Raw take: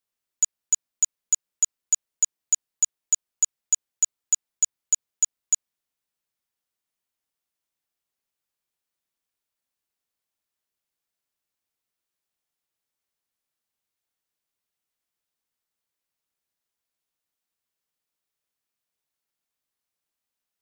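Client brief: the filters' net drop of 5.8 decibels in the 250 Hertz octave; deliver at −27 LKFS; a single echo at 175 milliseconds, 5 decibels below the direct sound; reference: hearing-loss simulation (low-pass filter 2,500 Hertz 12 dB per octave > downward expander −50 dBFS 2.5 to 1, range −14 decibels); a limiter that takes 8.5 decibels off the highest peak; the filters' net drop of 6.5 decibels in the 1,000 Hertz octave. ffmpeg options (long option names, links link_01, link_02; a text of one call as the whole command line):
ffmpeg -i in.wav -af "equalizer=frequency=250:width_type=o:gain=-7.5,equalizer=frequency=1000:width_type=o:gain=-8,alimiter=limit=-21.5dB:level=0:latency=1,lowpass=2500,aecho=1:1:175:0.562,agate=range=-14dB:threshold=-50dB:ratio=2.5,volume=24dB" out.wav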